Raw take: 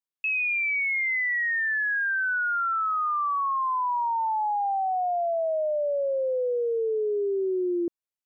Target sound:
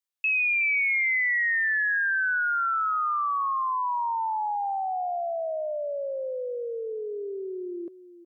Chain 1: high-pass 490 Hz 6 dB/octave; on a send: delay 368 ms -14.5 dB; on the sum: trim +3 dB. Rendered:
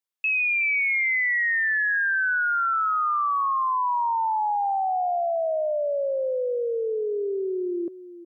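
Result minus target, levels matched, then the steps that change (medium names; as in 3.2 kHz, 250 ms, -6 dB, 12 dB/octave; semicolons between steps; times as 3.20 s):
500 Hz band +3.5 dB
change: high-pass 1.3 kHz 6 dB/octave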